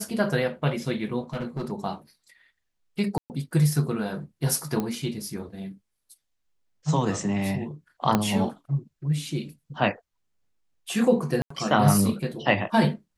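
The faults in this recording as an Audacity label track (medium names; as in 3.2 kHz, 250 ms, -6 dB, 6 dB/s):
1.330000	1.720000	clipped -26 dBFS
3.180000	3.300000	dropout 119 ms
4.800000	4.800000	pop -15 dBFS
8.150000	8.150000	pop -7 dBFS
11.420000	11.500000	dropout 84 ms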